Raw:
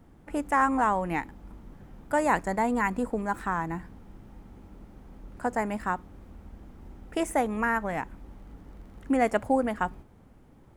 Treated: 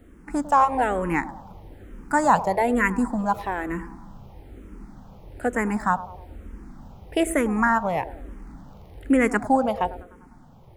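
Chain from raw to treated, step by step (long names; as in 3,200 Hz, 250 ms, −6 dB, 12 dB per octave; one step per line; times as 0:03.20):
on a send: delay with a band-pass on its return 100 ms, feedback 52%, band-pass 540 Hz, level −13 dB
on the sum: frequency shifter mixed with the dry sound −1.1 Hz
level +8 dB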